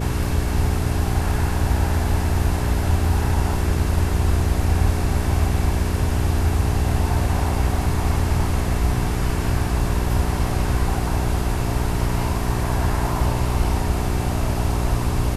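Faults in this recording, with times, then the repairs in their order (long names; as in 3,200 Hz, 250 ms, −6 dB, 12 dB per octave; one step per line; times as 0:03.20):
mains hum 60 Hz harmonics 7 −25 dBFS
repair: hum removal 60 Hz, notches 7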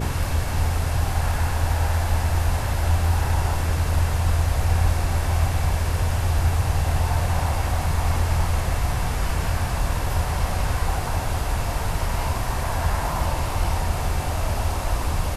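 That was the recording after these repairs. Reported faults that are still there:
none of them is left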